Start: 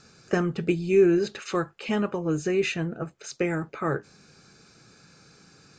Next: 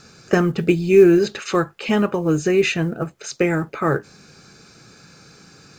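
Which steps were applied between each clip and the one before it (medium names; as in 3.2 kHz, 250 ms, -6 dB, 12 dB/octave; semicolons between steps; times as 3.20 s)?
companded quantiser 8-bit; trim +7.5 dB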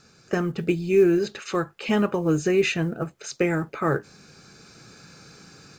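level rider gain up to 7.5 dB; trim -8.5 dB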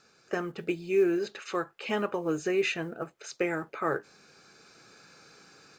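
tone controls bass -13 dB, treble -4 dB; trim -4 dB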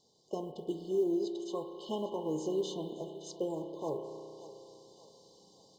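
brick-wall FIR band-stop 1.1–2.9 kHz; thinning echo 578 ms, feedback 51%, high-pass 420 Hz, level -15 dB; spring tank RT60 2.6 s, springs 32 ms, chirp 35 ms, DRR 5.5 dB; trim -5.5 dB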